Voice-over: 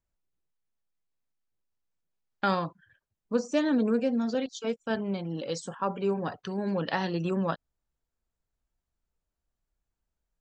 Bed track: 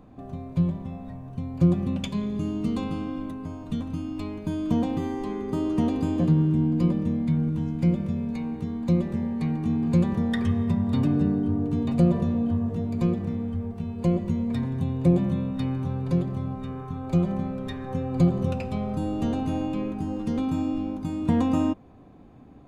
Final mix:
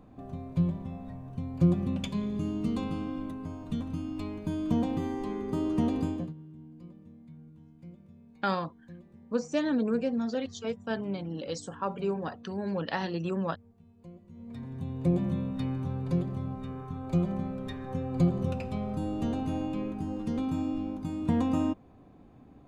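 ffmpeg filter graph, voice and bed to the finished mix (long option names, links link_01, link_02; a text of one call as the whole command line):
ffmpeg -i stem1.wav -i stem2.wav -filter_complex "[0:a]adelay=6000,volume=-2.5dB[link_01];[1:a]volume=18dB,afade=type=out:start_time=6.01:duration=0.32:silence=0.0749894,afade=type=in:start_time=14.3:duration=1.01:silence=0.0841395[link_02];[link_01][link_02]amix=inputs=2:normalize=0" out.wav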